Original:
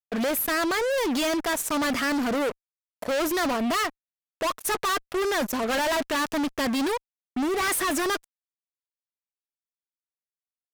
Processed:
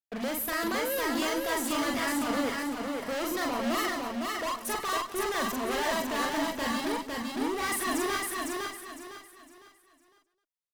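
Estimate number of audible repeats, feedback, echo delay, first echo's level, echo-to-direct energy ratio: 15, repeats not evenly spaced, 42 ms, −1.5 dB, 2.0 dB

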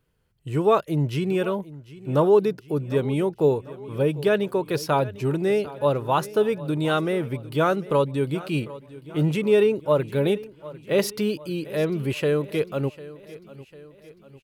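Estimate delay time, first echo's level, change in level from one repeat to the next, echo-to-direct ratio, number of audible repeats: 749 ms, −18.0 dB, −5.5 dB, −16.5 dB, 3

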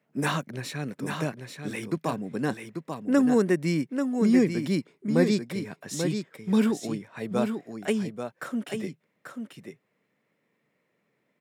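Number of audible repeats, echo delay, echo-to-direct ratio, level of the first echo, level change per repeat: 1, 838 ms, −6.5 dB, −6.5 dB, repeats not evenly spaced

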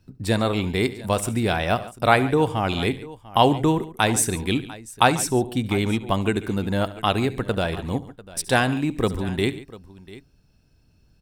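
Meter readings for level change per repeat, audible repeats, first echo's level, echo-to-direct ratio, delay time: repeats not evenly spaced, 3, −18.0 dB, −13.5 dB, 71 ms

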